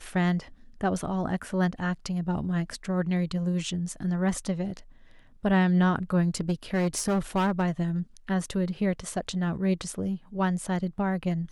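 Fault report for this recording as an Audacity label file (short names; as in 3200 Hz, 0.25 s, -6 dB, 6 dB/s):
6.400000	7.820000	clipped -21 dBFS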